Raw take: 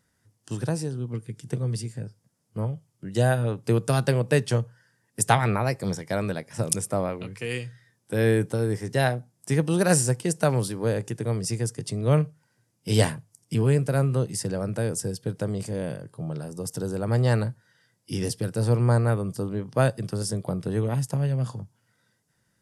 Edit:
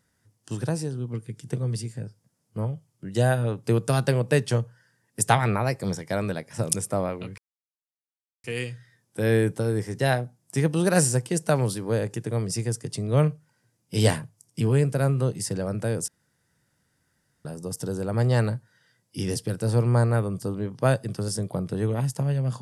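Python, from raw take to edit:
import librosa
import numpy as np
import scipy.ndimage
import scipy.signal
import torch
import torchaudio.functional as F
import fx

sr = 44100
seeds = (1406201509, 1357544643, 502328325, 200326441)

y = fx.edit(x, sr, fx.insert_silence(at_s=7.38, length_s=1.06),
    fx.room_tone_fill(start_s=15.02, length_s=1.37), tone=tone)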